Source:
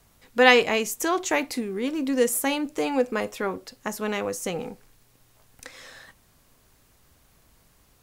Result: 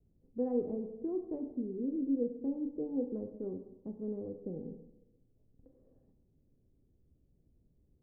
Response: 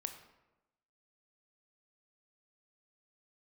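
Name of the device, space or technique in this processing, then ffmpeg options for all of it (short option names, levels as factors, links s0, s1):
next room: -filter_complex "[0:a]lowpass=f=410:w=0.5412,lowpass=f=410:w=1.3066[s0];[1:a]atrim=start_sample=2205[s1];[s0][s1]afir=irnorm=-1:irlink=0,volume=0.562"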